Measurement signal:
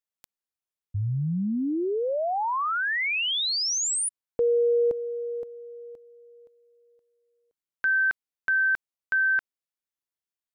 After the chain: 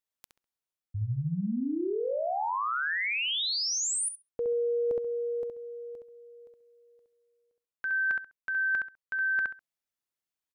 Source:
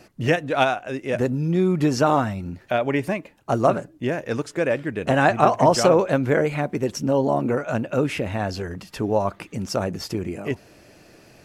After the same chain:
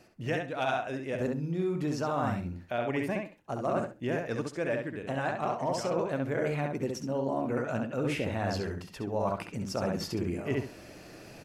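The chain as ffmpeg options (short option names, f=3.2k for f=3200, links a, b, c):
-filter_complex "[0:a]asoftclip=type=hard:threshold=-5.5dB,asplit=2[a][b];[b]adelay=67,lowpass=f=4.2k:p=1,volume=-3.5dB,asplit=2[c][d];[d]adelay=67,lowpass=f=4.2k:p=1,volume=0.23,asplit=2[e][f];[f]adelay=67,lowpass=f=4.2k:p=1,volume=0.23[g];[a][c][e][g]amix=inputs=4:normalize=0,areverse,acompressor=threshold=-26dB:ratio=12:attack=25:release=938:knee=6:detection=rms,areverse"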